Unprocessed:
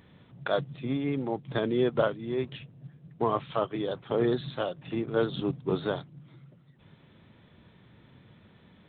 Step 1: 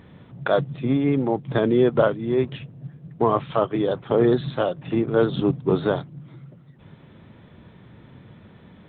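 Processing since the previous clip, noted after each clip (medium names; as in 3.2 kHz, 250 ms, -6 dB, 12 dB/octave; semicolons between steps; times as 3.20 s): treble shelf 2.6 kHz -9.5 dB; in parallel at -2.5 dB: peak limiter -20.5 dBFS, peak gain reduction 6.5 dB; on the sum: trim +4.5 dB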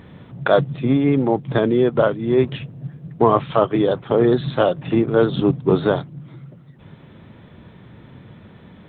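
gain riding 0.5 s; trim +4 dB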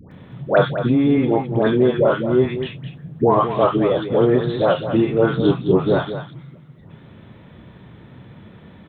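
phase dispersion highs, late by 117 ms, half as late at 940 Hz; on a send: loudspeakers at several distances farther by 11 m -12 dB, 72 m -10 dB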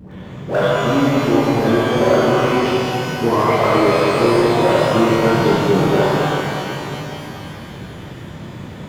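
power-law waveshaper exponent 0.7; pitch-shifted reverb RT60 2.9 s, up +12 st, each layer -8 dB, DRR -7 dB; trim -8.5 dB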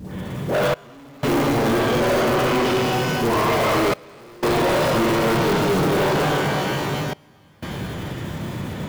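block-companded coder 5-bit; saturation -20 dBFS, distortion -7 dB; trance gate "xxx..xxxxxxxx" 61 bpm -24 dB; trim +3.5 dB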